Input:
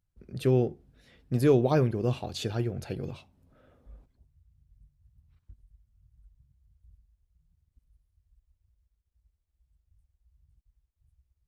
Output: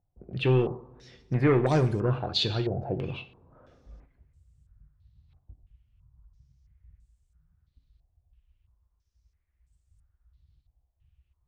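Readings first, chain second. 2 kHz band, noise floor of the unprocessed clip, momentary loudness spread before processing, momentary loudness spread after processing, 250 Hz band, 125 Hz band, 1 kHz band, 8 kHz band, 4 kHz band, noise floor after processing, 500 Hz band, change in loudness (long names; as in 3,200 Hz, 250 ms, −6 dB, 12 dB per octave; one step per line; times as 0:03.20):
+6.5 dB, −79 dBFS, 14 LU, 14 LU, 0.0 dB, +2.0 dB, +3.0 dB, −3.5 dB, +10.5 dB, −75 dBFS, −0.5 dB, +1.0 dB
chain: soft clipping −19.5 dBFS, distortion −13 dB
coupled-rooms reverb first 0.51 s, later 2.1 s, from −20 dB, DRR 9 dB
low-pass on a step sequencer 3 Hz 730–8,000 Hz
level +2 dB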